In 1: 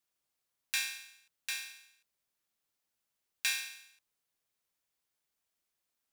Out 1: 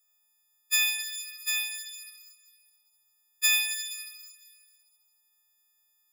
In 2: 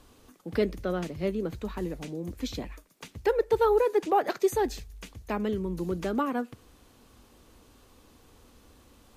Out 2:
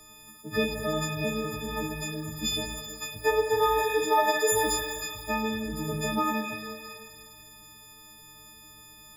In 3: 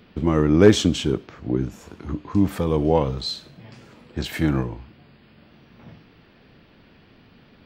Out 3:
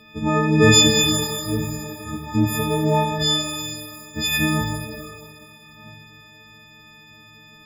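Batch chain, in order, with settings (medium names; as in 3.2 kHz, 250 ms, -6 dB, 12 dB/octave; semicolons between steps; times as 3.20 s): partials quantised in pitch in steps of 6 st; pitch-shifted reverb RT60 1.6 s, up +12 st, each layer -8 dB, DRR 3.5 dB; trim -1 dB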